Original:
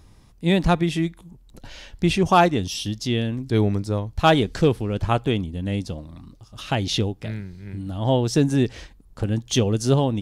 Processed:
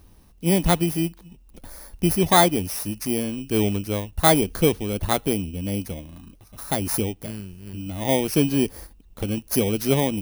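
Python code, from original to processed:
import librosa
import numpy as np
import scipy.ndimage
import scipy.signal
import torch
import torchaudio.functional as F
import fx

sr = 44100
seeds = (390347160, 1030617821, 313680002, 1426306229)

y = fx.bit_reversed(x, sr, seeds[0], block=16)
y = fx.peak_eq(y, sr, hz=120.0, db=-13.5, octaves=0.28)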